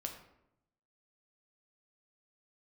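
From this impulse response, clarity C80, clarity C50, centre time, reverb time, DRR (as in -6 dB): 10.0 dB, 7.5 dB, 21 ms, 0.80 s, 2.5 dB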